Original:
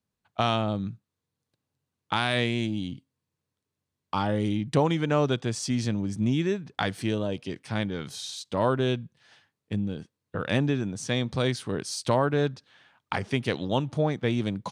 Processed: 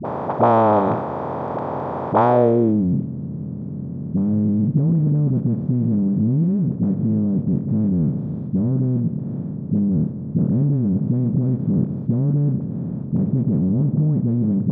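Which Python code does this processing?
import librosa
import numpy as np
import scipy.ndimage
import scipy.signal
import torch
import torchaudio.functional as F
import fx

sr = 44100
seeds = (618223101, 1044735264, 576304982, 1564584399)

y = fx.bin_compress(x, sr, power=0.2)
y = fx.high_shelf(y, sr, hz=6200.0, db=7.5)
y = fx.hum_notches(y, sr, base_hz=50, count=2)
y = fx.dispersion(y, sr, late='highs', ms=50.0, hz=450.0)
y = fx.filter_sweep_lowpass(y, sr, from_hz=880.0, to_hz=190.0, start_s=2.26, end_s=2.88, q=2.4)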